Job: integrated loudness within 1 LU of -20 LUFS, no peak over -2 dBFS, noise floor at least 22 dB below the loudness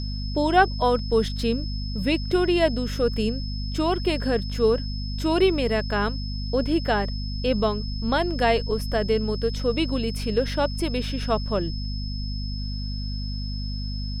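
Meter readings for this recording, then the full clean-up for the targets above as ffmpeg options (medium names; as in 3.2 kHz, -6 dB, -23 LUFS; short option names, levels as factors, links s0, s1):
hum 50 Hz; highest harmonic 250 Hz; hum level -27 dBFS; steady tone 5.2 kHz; tone level -37 dBFS; loudness -25.0 LUFS; peak level -5.5 dBFS; loudness target -20.0 LUFS
-> -af "bandreject=f=50:t=h:w=6,bandreject=f=100:t=h:w=6,bandreject=f=150:t=h:w=6,bandreject=f=200:t=h:w=6,bandreject=f=250:t=h:w=6"
-af "bandreject=f=5200:w=30"
-af "volume=1.78,alimiter=limit=0.794:level=0:latency=1"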